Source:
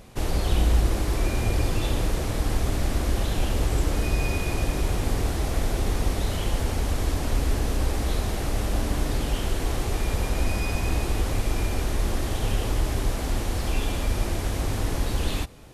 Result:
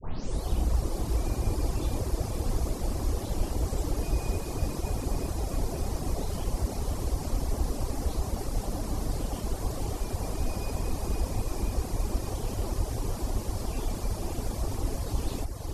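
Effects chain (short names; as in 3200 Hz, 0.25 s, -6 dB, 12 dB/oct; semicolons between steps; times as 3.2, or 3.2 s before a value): tape start at the beginning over 0.44 s; band shelf 2300 Hz -8.5 dB; on a send: diffused feedback echo 0.559 s, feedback 63%, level -4 dB; on the sum: reverb removal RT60 0.86 s; gain -4.5 dB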